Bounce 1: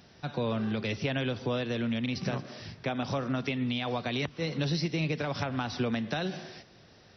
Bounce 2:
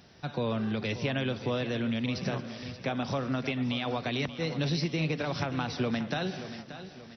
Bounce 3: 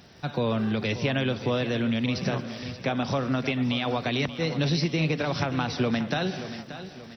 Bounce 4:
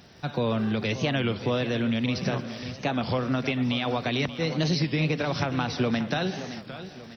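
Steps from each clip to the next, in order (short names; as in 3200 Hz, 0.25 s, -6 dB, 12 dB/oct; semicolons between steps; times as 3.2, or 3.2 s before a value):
feedback echo 0.581 s, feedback 44%, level -12.5 dB
crackle 180/s -58 dBFS; gain +4.5 dB
record warp 33 1/3 rpm, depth 160 cents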